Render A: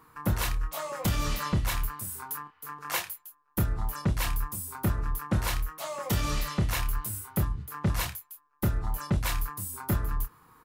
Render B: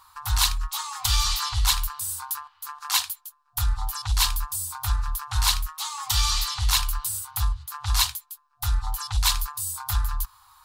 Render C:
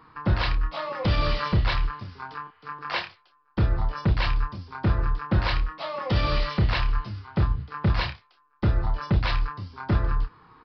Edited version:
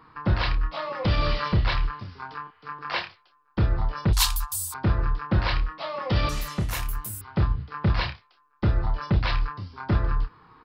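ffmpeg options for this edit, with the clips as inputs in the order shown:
-filter_complex "[2:a]asplit=3[a][b][c];[a]atrim=end=4.132[d];[1:a]atrim=start=4.128:end=4.742[e];[b]atrim=start=4.738:end=6.292[f];[0:a]atrim=start=6.288:end=7.212[g];[c]atrim=start=7.208[h];[d][e]acrossfade=d=0.004:c1=hsin:c2=hsin[i];[i][f]acrossfade=d=0.004:c1=hsin:c2=hsin[j];[j][g]acrossfade=d=0.004:c1=hsin:c2=hsin[k];[k][h]acrossfade=d=0.004:c1=hsin:c2=hsin"

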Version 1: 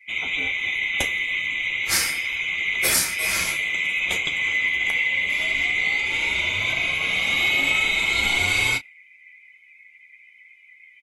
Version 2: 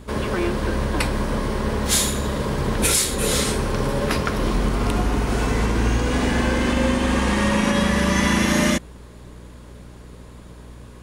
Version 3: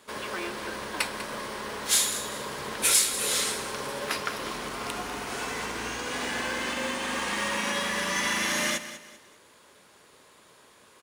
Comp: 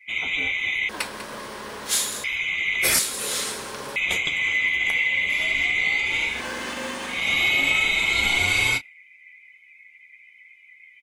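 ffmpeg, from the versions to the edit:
-filter_complex "[2:a]asplit=3[a][b][c];[0:a]asplit=4[d][e][f][g];[d]atrim=end=0.892[h];[a]atrim=start=0.888:end=2.242[i];[e]atrim=start=2.238:end=2.992[j];[b]atrim=start=2.988:end=3.962[k];[f]atrim=start=3.958:end=6.46[l];[c]atrim=start=6.22:end=7.28[m];[g]atrim=start=7.04[n];[h][i]acrossfade=d=0.004:c1=hsin:c2=hsin[o];[o][j]acrossfade=d=0.004:c1=hsin:c2=hsin[p];[p][k]acrossfade=d=0.004:c1=hsin:c2=hsin[q];[q][l]acrossfade=d=0.004:c1=hsin:c2=hsin[r];[r][m]acrossfade=d=0.24:c1=tri:c2=tri[s];[s][n]acrossfade=d=0.24:c1=tri:c2=tri"

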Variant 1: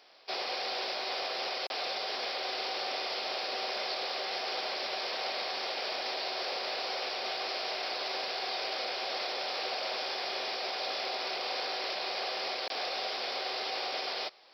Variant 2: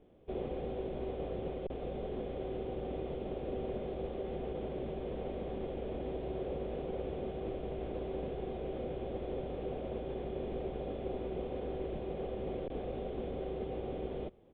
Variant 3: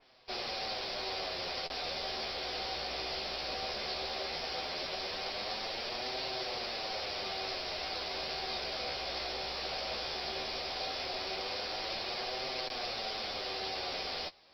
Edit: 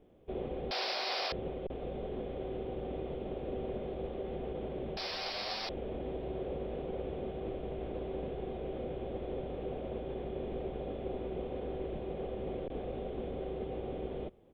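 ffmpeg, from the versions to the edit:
-filter_complex "[1:a]asplit=3[a][b][c];[a]atrim=end=0.712[d];[0:a]atrim=start=0.708:end=1.322[e];[b]atrim=start=1.318:end=4.972[f];[2:a]atrim=start=4.968:end=5.692[g];[c]atrim=start=5.688[h];[d][e]acrossfade=d=0.004:c1=hsin:c2=hsin[i];[i][f]acrossfade=d=0.004:c1=hsin:c2=hsin[j];[j][g]acrossfade=d=0.004:c1=hsin:c2=hsin[k];[k][h]acrossfade=d=0.004:c1=hsin:c2=hsin"

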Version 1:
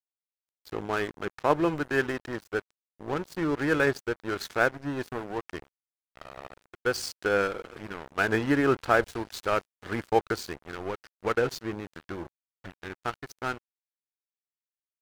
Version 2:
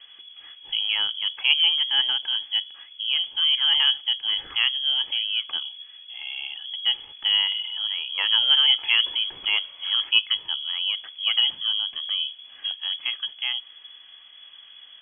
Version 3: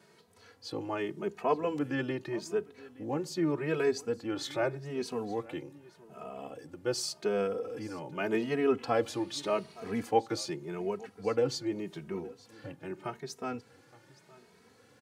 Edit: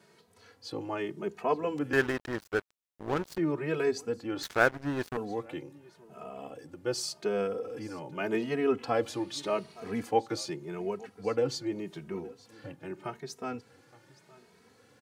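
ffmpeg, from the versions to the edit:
-filter_complex "[0:a]asplit=2[a][b];[2:a]asplit=3[c][d][e];[c]atrim=end=1.932[f];[a]atrim=start=1.928:end=3.382[g];[d]atrim=start=3.378:end=4.432[h];[b]atrim=start=4.428:end=5.172[i];[e]atrim=start=5.168[j];[f][g]acrossfade=d=0.004:c1=hsin:c2=hsin[k];[k][h]acrossfade=d=0.004:c1=hsin:c2=hsin[l];[l][i]acrossfade=d=0.004:c1=hsin:c2=hsin[m];[m][j]acrossfade=d=0.004:c1=hsin:c2=hsin"

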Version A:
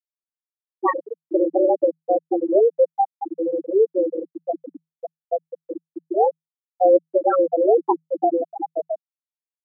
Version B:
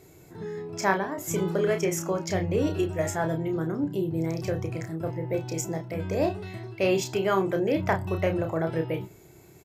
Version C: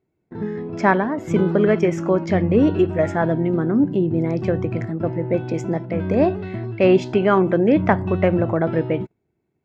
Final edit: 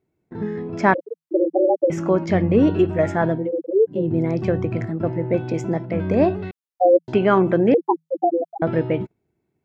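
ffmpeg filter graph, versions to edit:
-filter_complex "[0:a]asplit=4[a][b][c][d];[2:a]asplit=5[e][f][g][h][i];[e]atrim=end=0.942[j];[a]atrim=start=0.938:end=1.902[k];[f]atrim=start=1.898:end=3.52[l];[b]atrim=start=3.28:end=4.1[m];[g]atrim=start=3.86:end=6.512[n];[c]atrim=start=6.508:end=7.082[o];[h]atrim=start=7.078:end=7.742[p];[d]atrim=start=7.738:end=8.622[q];[i]atrim=start=8.618[r];[j][k]acrossfade=d=0.004:c1=hsin:c2=hsin[s];[s][l]acrossfade=d=0.004:c1=hsin:c2=hsin[t];[t][m]acrossfade=d=0.24:c1=tri:c2=tri[u];[u][n]acrossfade=d=0.24:c1=tri:c2=tri[v];[v][o]acrossfade=d=0.004:c1=hsin:c2=hsin[w];[w][p]acrossfade=d=0.004:c1=hsin:c2=hsin[x];[x][q]acrossfade=d=0.004:c1=hsin:c2=hsin[y];[y][r]acrossfade=d=0.004:c1=hsin:c2=hsin"

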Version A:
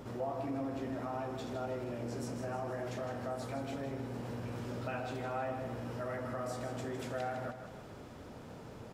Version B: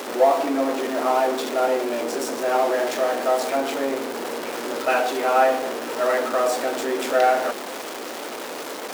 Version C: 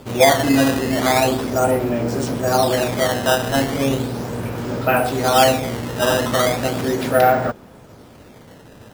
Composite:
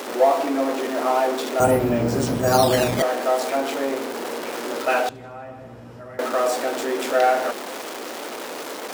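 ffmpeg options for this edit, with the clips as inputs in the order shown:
-filter_complex "[1:a]asplit=3[a][b][c];[a]atrim=end=1.602[d];[2:a]atrim=start=1.598:end=3.022[e];[b]atrim=start=3.018:end=5.092[f];[0:a]atrim=start=5.088:end=6.192[g];[c]atrim=start=6.188[h];[d][e]acrossfade=d=0.004:c1=hsin:c2=hsin[i];[i][f]acrossfade=d=0.004:c1=hsin:c2=hsin[j];[j][g]acrossfade=d=0.004:c1=hsin:c2=hsin[k];[k][h]acrossfade=d=0.004:c1=hsin:c2=hsin"

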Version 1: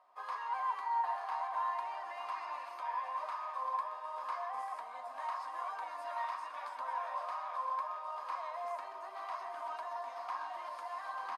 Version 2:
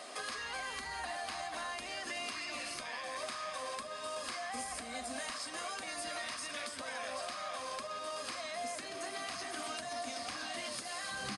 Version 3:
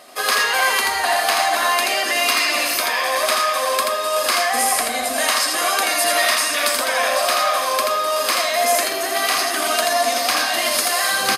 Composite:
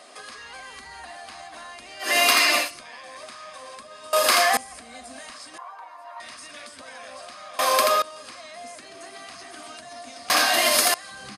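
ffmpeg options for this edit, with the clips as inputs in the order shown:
-filter_complex "[2:a]asplit=4[a][b][c][d];[1:a]asplit=6[e][f][g][h][i][j];[e]atrim=end=2.15[k];[a]atrim=start=1.99:end=2.71[l];[f]atrim=start=2.55:end=4.132[m];[b]atrim=start=4.128:end=4.572[n];[g]atrim=start=4.568:end=5.582[o];[0:a]atrim=start=5.578:end=6.202[p];[h]atrim=start=6.198:end=7.592[q];[c]atrim=start=7.588:end=8.022[r];[i]atrim=start=8.018:end=10.302[s];[d]atrim=start=10.298:end=10.942[t];[j]atrim=start=10.938[u];[k][l]acrossfade=d=0.16:c1=tri:c2=tri[v];[v][m]acrossfade=d=0.16:c1=tri:c2=tri[w];[w][n]acrossfade=d=0.004:c1=hsin:c2=hsin[x];[x][o]acrossfade=d=0.004:c1=hsin:c2=hsin[y];[y][p]acrossfade=d=0.004:c1=hsin:c2=hsin[z];[z][q]acrossfade=d=0.004:c1=hsin:c2=hsin[aa];[aa][r]acrossfade=d=0.004:c1=hsin:c2=hsin[ab];[ab][s]acrossfade=d=0.004:c1=hsin:c2=hsin[ac];[ac][t]acrossfade=d=0.004:c1=hsin:c2=hsin[ad];[ad][u]acrossfade=d=0.004:c1=hsin:c2=hsin"

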